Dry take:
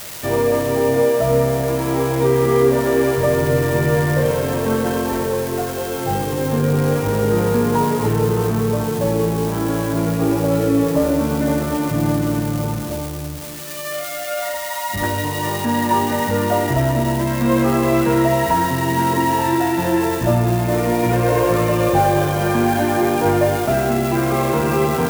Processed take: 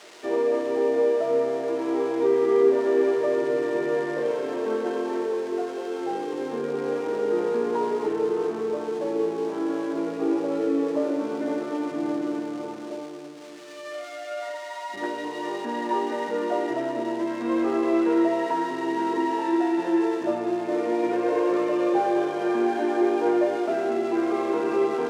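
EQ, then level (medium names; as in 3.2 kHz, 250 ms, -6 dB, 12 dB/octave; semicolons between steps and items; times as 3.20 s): ladder high-pass 300 Hz, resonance 50%; distance through air 99 m; band-stop 540 Hz, Q 12; 0.0 dB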